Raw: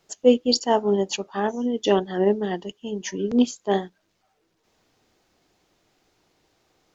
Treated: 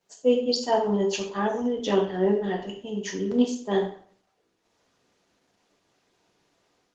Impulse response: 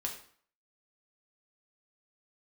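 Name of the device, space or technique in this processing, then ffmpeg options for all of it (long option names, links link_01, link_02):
far-field microphone of a smart speaker: -filter_complex "[1:a]atrim=start_sample=2205[link_01];[0:a][link_01]afir=irnorm=-1:irlink=0,highpass=130,dynaudnorm=framelen=190:gausssize=3:maxgain=6dB,volume=-7.5dB" -ar 48000 -c:a libopus -b:a 16k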